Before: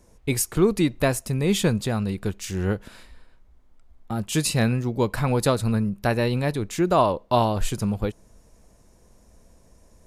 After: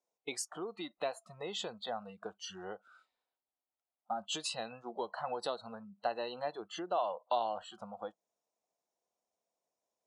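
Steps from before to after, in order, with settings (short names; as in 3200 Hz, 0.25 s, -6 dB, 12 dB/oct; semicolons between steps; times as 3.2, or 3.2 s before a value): spectral noise reduction 25 dB; compressor 6:1, threshold -29 dBFS, peak gain reduction 15 dB; speaker cabinet 490–8600 Hz, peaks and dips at 740 Hz +8 dB, 1700 Hz -7 dB, 3600 Hz +4 dB; gain -3 dB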